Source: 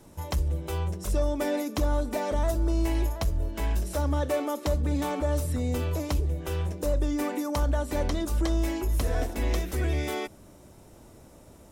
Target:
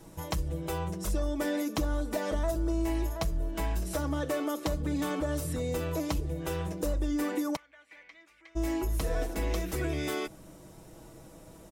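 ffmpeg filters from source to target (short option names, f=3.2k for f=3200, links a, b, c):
-filter_complex "[0:a]aecho=1:1:6.2:0.55,acompressor=threshold=-29dB:ratio=2,asplit=3[a][b][c];[a]afade=t=out:st=7.55:d=0.02[d];[b]bandpass=f=2.2k:t=q:w=7:csg=0,afade=t=in:st=7.55:d=0.02,afade=t=out:st=8.55:d=0.02[e];[c]afade=t=in:st=8.55:d=0.02[f];[d][e][f]amix=inputs=3:normalize=0"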